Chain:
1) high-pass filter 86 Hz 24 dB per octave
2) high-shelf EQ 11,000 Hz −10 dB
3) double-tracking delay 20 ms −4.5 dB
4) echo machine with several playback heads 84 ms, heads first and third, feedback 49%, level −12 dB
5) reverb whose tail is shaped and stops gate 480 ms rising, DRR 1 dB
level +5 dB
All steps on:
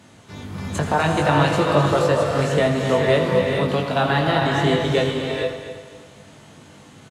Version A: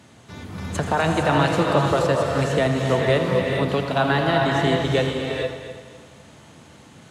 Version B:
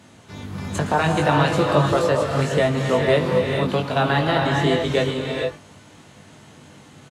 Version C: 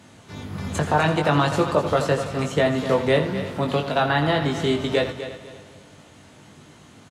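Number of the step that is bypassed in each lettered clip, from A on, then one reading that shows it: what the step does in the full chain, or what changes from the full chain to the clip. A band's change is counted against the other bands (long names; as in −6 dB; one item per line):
3, change in integrated loudness −1.5 LU
4, change in momentary loudness spread −4 LU
5, change in integrated loudness −2.5 LU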